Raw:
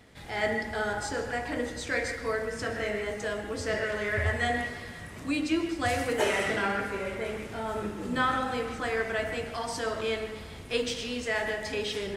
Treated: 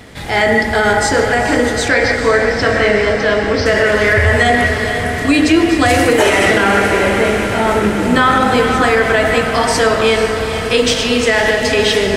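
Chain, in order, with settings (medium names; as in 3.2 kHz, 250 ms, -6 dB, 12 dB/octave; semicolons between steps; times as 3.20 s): 1.88–3.66 s: steep low-pass 5.8 kHz 96 dB/octave; echo that smears into a reverb 467 ms, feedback 67%, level -9.5 dB; loudness maximiser +19.5 dB; trim -1 dB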